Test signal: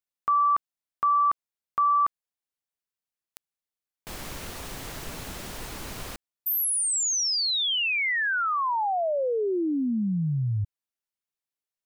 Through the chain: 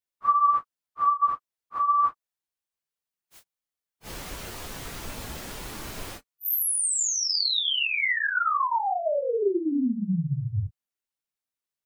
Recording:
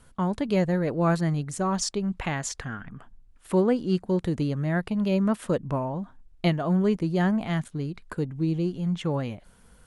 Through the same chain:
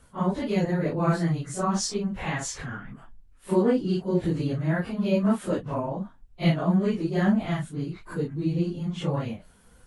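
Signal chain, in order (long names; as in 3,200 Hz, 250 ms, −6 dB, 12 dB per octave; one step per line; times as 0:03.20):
random phases in long frames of 100 ms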